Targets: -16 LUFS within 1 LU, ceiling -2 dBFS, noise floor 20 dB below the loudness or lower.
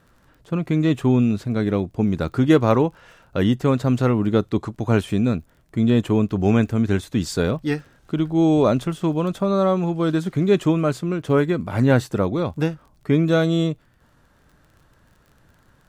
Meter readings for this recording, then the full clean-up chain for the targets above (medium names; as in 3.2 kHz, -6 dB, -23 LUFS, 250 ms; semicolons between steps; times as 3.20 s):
tick rate 27 per s; loudness -21.0 LUFS; peak level -4.0 dBFS; loudness target -16.0 LUFS
-> de-click; trim +5 dB; peak limiter -2 dBFS